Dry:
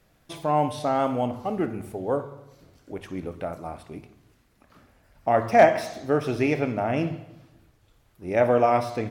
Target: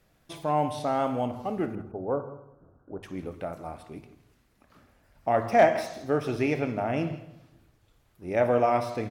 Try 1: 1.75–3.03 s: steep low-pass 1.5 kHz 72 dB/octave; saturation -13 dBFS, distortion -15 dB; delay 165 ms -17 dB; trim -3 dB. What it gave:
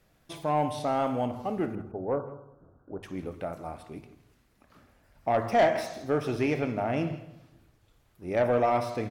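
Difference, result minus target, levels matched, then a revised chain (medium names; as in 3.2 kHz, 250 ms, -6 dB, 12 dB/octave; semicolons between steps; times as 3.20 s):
saturation: distortion +15 dB
1.75–3.03 s: steep low-pass 1.5 kHz 72 dB/octave; saturation -3 dBFS, distortion -29 dB; delay 165 ms -17 dB; trim -3 dB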